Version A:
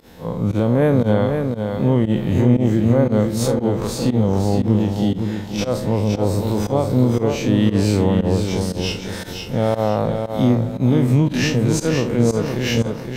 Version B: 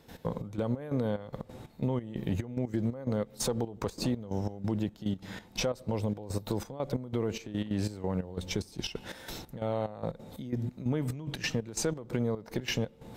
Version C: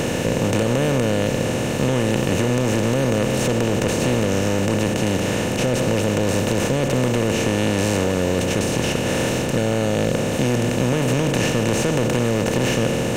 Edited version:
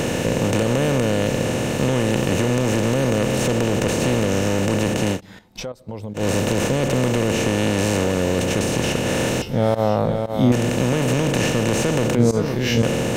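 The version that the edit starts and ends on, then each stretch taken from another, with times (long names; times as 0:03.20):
C
0:05.16–0:06.19: punch in from B, crossfade 0.10 s
0:09.42–0:10.52: punch in from A
0:12.15–0:12.83: punch in from A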